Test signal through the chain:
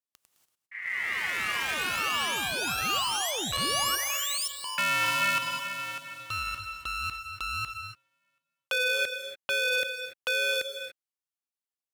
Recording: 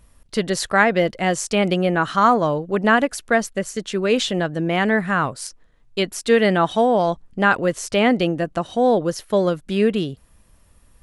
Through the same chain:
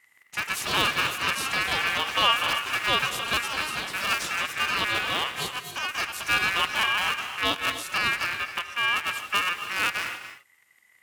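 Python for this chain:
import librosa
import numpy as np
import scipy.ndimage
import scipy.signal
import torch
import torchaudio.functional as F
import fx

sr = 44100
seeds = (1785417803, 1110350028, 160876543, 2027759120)

y = fx.cycle_switch(x, sr, every=2, mode='inverted')
y = fx.echo_pitch(y, sr, ms=144, semitones=6, count=3, db_per_echo=-6.0)
y = fx.peak_eq(y, sr, hz=830.0, db=6.5, octaves=0.53)
y = fx.wow_flutter(y, sr, seeds[0], rate_hz=2.1, depth_cents=27.0)
y = fx.peak_eq(y, sr, hz=9000.0, db=5.0, octaves=0.91)
y = fx.rev_gated(y, sr, seeds[1], gate_ms=310, shape='rising', drr_db=8.5)
y = y * np.sin(2.0 * np.pi * 2000.0 * np.arange(len(y)) / sr)
y = scipy.signal.sosfilt(scipy.signal.butter(2, 51.0, 'highpass', fs=sr, output='sos'), y)
y = fx.transformer_sat(y, sr, knee_hz=820.0)
y = F.gain(torch.from_numpy(y), -7.5).numpy()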